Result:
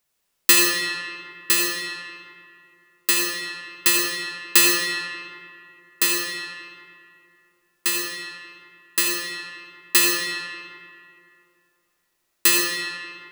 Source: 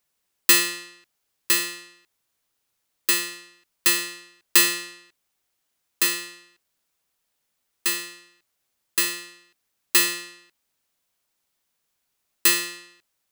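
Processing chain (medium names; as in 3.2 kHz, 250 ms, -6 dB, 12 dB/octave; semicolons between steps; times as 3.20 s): algorithmic reverb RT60 2.5 s, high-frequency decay 0.6×, pre-delay 35 ms, DRR -0.5 dB; trim +1 dB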